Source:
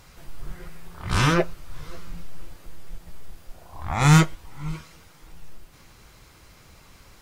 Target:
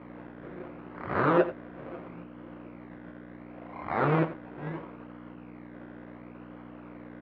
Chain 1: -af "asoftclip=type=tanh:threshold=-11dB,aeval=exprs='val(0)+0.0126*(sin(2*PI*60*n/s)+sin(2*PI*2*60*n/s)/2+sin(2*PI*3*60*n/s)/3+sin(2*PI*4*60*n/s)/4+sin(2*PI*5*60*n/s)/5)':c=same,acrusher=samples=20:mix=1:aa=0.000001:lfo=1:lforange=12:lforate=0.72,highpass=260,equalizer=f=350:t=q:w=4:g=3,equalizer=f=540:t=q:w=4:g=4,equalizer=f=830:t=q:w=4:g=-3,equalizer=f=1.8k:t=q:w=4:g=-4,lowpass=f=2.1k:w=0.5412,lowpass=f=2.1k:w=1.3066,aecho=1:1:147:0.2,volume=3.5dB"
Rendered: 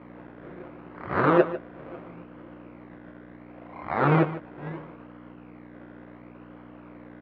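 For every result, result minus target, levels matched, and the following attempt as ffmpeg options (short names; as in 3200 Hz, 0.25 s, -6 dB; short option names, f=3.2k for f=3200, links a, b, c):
echo 60 ms late; soft clip: distortion -8 dB
-af "asoftclip=type=tanh:threshold=-11dB,aeval=exprs='val(0)+0.0126*(sin(2*PI*60*n/s)+sin(2*PI*2*60*n/s)/2+sin(2*PI*3*60*n/s)/3+sin(2*PI*4*60*n/s)/4+sin(2*PI*5*60*n/s)/5)':c=same,acrusher=samples=20:mix=1:aa=0.000001:lfo=1:lforange=12:lforate=0.72,highpass=260,equalizer=f=350:t=q:w=4:g=3,equalizer=f=540:t=q:w=4:g=4,equalizer=f=830:t=q:w=4:g=-3,equalizer=f=1.8k:t=q:w=4:g=-4,lowpass=f=2.1k:w=0.5412,lowpass=f=2.1k:w=1.3066,aecho=1:1:87:0.2,volume=3.5dB"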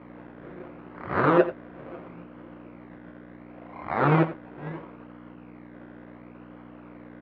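soft clip: distortion -8 dB
-af "asoftclip=type=tanh:threshold=-19.5dB,aeval=exprs='val(0)+0.0126*(sin(2*PI*60*n/s)+sin(2*PI*2*60*n/s)/2+sin(2*PI*3*60*n/s)/3+sin(2*PI*4*60*n/s)/4+sin(2*PI*5*60*n/s)/5)':c=same,acrusher=samples=20:mix=1:aa=0.000001:lfo=1:lforange=12:lforate=0.72,highpass=260,equalizer=f=350:t=q:w=4:g=3,equalizer=f=540:t=q:w=4:g=4,equalizer=f=830:t=q:w=4:g=-3,equalizer=f=1.8k:t=q:w=4:g=-4,lowpass=f=2.1k:w=0.5412,lowpass=f=2.1k:w=1.3066,aecho=1:1:87:0.2,volume=3.5dB"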